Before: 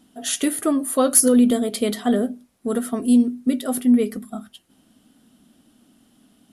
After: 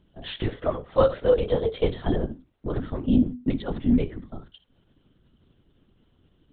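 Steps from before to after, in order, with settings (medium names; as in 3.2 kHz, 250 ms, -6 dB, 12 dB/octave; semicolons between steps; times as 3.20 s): 0.48–1.88 s: resonant low shelf 310 Hz -12 dB, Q 3; flutter echo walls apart 11.3 m, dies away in 0.24 s; LPC vocoder at 8 kHz whisper; trim -5 dB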